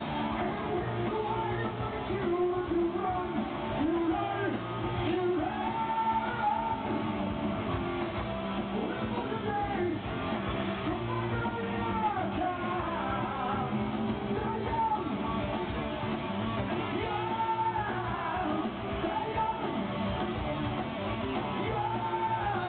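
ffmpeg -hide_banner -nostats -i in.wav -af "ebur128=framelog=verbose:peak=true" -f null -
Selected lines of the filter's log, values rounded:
Integrated loudness:
  I:         -32.0 LUFS
  Threshold: -42.0 LUFS
Loudness range:
  LRA:         1.8 LU
  Threshold: -52.0 LUFS
  LRA low:   -32.9 LUFS
  LRA high:  -31.1 LUFS
True peak:
  Peak:      -20.4 dBFS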